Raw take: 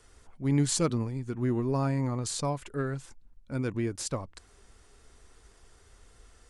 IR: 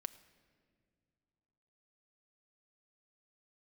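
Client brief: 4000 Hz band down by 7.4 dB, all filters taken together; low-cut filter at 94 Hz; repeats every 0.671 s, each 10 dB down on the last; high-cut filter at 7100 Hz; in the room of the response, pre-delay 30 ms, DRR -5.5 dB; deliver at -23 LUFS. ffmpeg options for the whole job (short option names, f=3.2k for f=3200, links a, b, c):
-filter_complex "[0:a]highpass=94,lowpass=7.1k,equalizer=f=4k:t=o:g=-8.5,aecho=1:1:671|1342|2013|2684:0.316|0.101|0.0324|0.0104,asplit=2[a][b];[1:a]atrim=start_sample=2205,adelay=30[c];[b][c]afir=irnorm=-1:irlink=0,volume=9dB[d];[a][d]amix=inputs=2:normalize=0,volume=2dB"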